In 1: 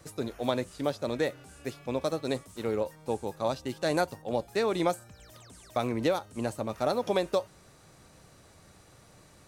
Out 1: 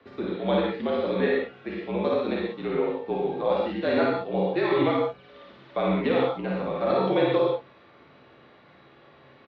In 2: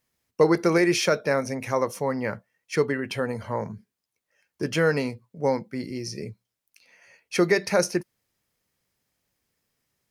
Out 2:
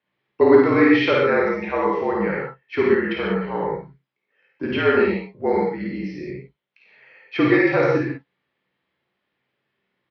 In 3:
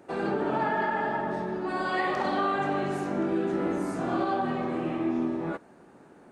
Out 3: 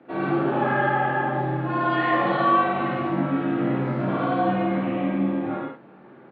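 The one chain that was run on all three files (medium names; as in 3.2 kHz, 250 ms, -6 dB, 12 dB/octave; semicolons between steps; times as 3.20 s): gated-style reverb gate 160 ms flat, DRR -2.5 dB; mistuned SSB -52 Hz 200–3600 Hz; on a send: early reflections 53 ms -3.5 dB, 68 ms -11.5 dB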